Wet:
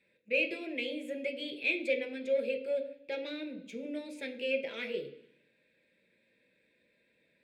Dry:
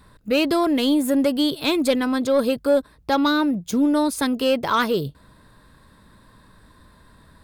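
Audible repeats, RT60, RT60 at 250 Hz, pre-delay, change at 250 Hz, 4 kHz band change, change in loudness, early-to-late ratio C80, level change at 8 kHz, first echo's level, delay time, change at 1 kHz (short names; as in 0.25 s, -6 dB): none, 0.65 s, 0.95 s, 3 ms, -21.5 dB, -15.0 dB, -14.0 dB, 15.5 dB, under -25 dB, none, none, -30.5 dB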